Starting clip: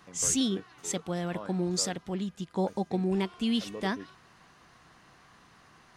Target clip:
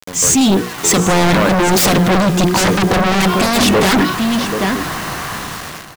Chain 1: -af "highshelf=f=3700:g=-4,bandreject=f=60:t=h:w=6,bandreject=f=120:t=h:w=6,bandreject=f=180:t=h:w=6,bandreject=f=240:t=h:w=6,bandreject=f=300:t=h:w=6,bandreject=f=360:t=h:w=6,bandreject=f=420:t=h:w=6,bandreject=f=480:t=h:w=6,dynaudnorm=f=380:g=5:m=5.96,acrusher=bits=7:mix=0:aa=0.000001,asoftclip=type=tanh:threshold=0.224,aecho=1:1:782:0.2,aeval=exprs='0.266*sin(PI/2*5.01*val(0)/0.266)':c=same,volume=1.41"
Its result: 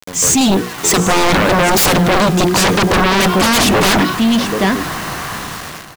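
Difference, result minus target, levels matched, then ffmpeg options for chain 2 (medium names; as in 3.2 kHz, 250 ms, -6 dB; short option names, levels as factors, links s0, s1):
saturation: distortion -6 dB
-af "highshelf=f=3700:g=-4,bandreject=f=60:t=h:w=6,bandreject=f=120:t=h:w=6,bandreject=f=180:t=h:w=6,bandreject=f=240:t=h:w=6,bandreject=f=300:t=h:w=6,bandreject=f=360:t=h:w=6,bandreject=f=420:t=h:w=6,bandreject=f=480:t=h:w=6,dynaudnorm=f=380:g=5:m=5.96,acrusher=bits=7:mix=0:aa=0.000001,asoftclip=type=tanh:threshold=0.1,aecho=1:1:782:0.2,aeval=exprs='0.266*sin(PI/2*5.01*val(0)/0.266)':c=same,volume=1.41"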